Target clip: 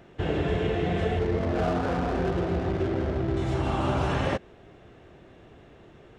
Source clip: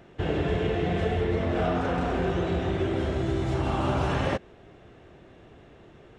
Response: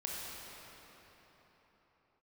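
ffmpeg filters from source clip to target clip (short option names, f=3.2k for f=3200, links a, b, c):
-filter_complex "[0:a]asettb=1/sr,asplit=3[a][b][c];[a]atrim=end=1.194[d];[b]atrim=start=1.19:end=3.37,asetpts=PTS-STARTPTS,afade=t=in:d=0.004:c=qsin,afade=t=out:st=2.176:d=0.004:c=qsin,adynamicsmooth=sensitivity=5:basefreq=530[e];[c]atrim=start=3.366[f];[d][e]acrossfade=d=0.004:c1=hsin:c2=qsin[g];[g][f]acrossfade=d=0.004:c1=qsin:c2=hsin"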